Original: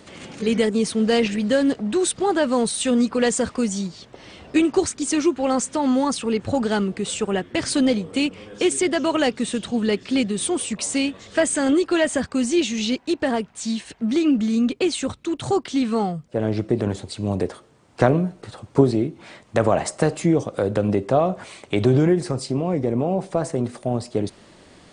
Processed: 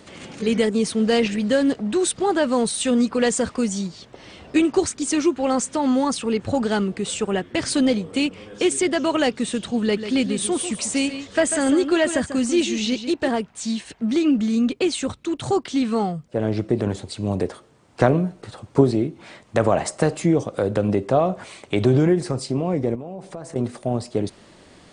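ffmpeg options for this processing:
-filter_complex "[0:a]asettb=1/sr,asplit=3[s0][s1][s2];[s0]atrim=end=9.824[s3];[s1]atrim=start=9.82:end=13.28,asetpts=PTS-STARTPTS,afade=t=in:d=0.004:c=qsin,afade=t=out:st=3.456:d=0.004:c=qsin,aecho=1:1:143:0.316,atrim=end_sample=152586[s4];[s2]atrim=start=13.276[s5];[s3][s4]acrossfade=d=0.004:c1=hsin:c2=qsin[s6];[s6][s5]acrossfade=d=0.004:c1=qsin:c2=hsin,asettb=1/sr,asplit=3[s7][s8][s9];[s7]atrim=end=22.954[s10];[s8]atrim=start=22.95:end=23.56,asetpts=PTS-STARTPTS,afade=t=in:d=0.004:c=qsin,afade=t=out:st=0.606:d=0.004:c=qsin,acompressor=threshold=0.02:ratio=3:attack=3.2:release=140:knee=1:detection=peak[s11];[s9]atrim=start=23.556[s12];[s10][s11]acrossfade=d=0.004:c1=hsin:c2=qsin[s13];[s13][s12]acrossfade=d=0.004:c1=qsin:c2=hsin"

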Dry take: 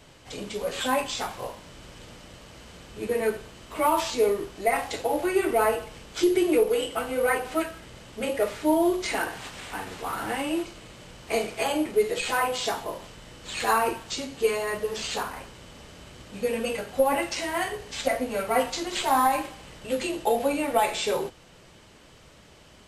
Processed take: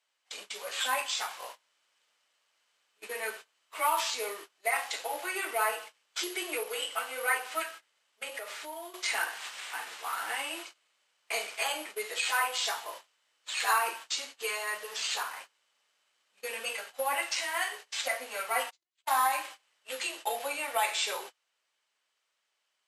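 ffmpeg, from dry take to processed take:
-filter_complex "[0:a]asettb=1/sr,asplit=3[s0][s1][s2];[s0]atrim=end=8.224[s3];[s1]atrim=start=8.22:end=8.94,asetpts=PTS-STARTPTS,afade=t=in:d=0.004:c=qsin,afade=t=out:st=0.716:d=0.004:c=qsin,acompressor=threshold=0.0398:ratio=5:attack=3.2:release=140:knee=1:detection=peak[s4];[s2]atrim=start=8.936[s5];[s3][s4]acrossfade=d=0.004:c1=hsin:c2=qsin[s6];[s6][s5]acrossfade=d=0.004:c1=qsin:c2=hsin,asplit=3[s7][s8][s9];[s7]afade=t=out:st=18.69:d=0.02[s10];[s8]agate=range=0.0178:threshold=0.0501:ratio=16:release=100:detection=peak,afade=t=in:st=18.69:d=0.02,afade=t=out:st=19.22:d=0.02[s11];[s9]afade=t=in:st=19.22:d=0.02[s12];[s10][s11][s12]amix=inputs=3:normalize=0,highpass=1100,agate=range=0.0708:threshold=0.00631:ratio=16:detection=peak"

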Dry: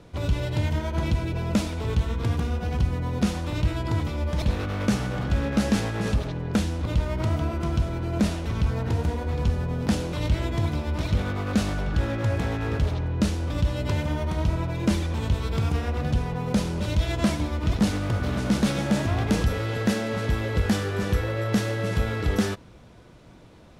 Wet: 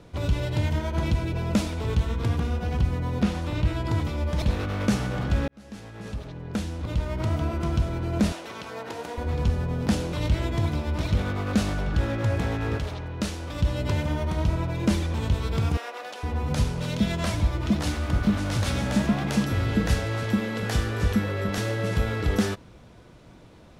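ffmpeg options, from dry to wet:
-filter_complex "[0:a]asettb=1/sr,asplit=3[s0][s1][s2];[s0]atrim=end=2.284[s3];[s1]atrim=start=2.28:end=3.84,asetpts=PTS-STARTPTS,afade=t=in:d=0.004:c=qsin,afade=t=out:st=1.556:d=0.004:c=qsin,acrossover=split=4100[s4][s5];[s5]acompressor=threshold=0.00398:ratio=4:attack=1:release=60[s6];[s4][s6]amix=inputs=2:normalize=0[s7];[s2]atrim=start=3.836[s8];[s3][s7]acrossfade=d=0.004:c1=hsin:c2=qsin[s9];[s9][s8]acrossfade=d=0.004:c1=qsin:c2=hsin,asettb=1/sr,asplit=3[s10][s11][s12];[s10]atrim=end=8.324[s13];[s11]atrim=start=8.32:end=9.18,asetpts=PTS-STARTPTS,afade=t=in:d=0.004:c=qsin,afade=t=out:st=0.856:d=0.004:c=qsin,highpass=440[s14];[s12]atrim=start=9.176[s15];[s13][s14]acrossfade=d=0.004:c1=hsin:c2=qsin[s16];[s16][s15]acrossfade=d=0.004:c1=qsin:c2=hsin,asettb=1/sr,asplit=3[s17][s18][s19];[s17]atrim=end=12.784[s20];[s18]atrim=start=12.78:end=13.61,asetpts=PTS-STARTPTS,afade=t=in:d=0.004:c=qsin,afade=t=out:st=0.826:d=0.004:c=qsin,lowshelf=f=390:g=-8[s21];[s19]atrim=start=13.606[s22];[s20][s21]acrossfade=d=0.004:c1=hsin:c2=qsin[s23];[s23][s22]acrossfade=d=0.004:c1=qsin:c2=hsin,asettb=1/sr,asplit=3[s24][s25][s26];[s24]atrim=end=15.774[s27];[s25]atrim=start=15.77:end=21.58,asetpts=PTS-STARTPTS,afade=t=in:d=0.004:c=qsin,afade=t=out:st=5.806:d=0.004:c=qsin,acrossover=split=470[s28][s29];[s28]adelay=460[s30];[s30][s29]amix=inputs=2:normalize=0,atrim=end_sample=256221[s31];[s26]atrim=start=21.576[s32];[s27][s31]acrossfade=d=0.004:c1=hsin:c2=qsin[s33];[s33][s32]acrossfade=d=0.004:c1=qsin:c2=hsin,asplit=2[s34][s35];[s34]atrim=end=5.48,asetpts=PTS-STARTPTS,afade=t=out:st=5.476:d=0.004:c=hsin[s36];[s35]atrim=start=5.48,asetpts=PTS-STARTPTS,afade=t=in:d=2.06[s37];[s36][s37]concat=n=2:v=0:a=1"

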